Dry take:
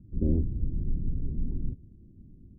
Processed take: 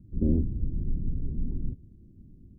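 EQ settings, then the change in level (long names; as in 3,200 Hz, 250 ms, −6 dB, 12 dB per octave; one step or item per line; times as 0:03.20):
dynamic equaliser 230 Hz, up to +4 dB, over −39 dBFS, Q 2.2
0.0 dB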